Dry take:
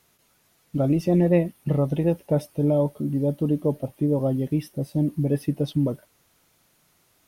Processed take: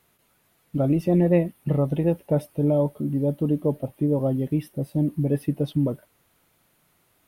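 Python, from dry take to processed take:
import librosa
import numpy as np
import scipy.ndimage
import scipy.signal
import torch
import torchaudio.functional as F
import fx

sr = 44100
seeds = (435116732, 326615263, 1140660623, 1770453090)

y = fx.peak_eq(x, sr, hz=5800.0, db=-8.0, octaves=0.99)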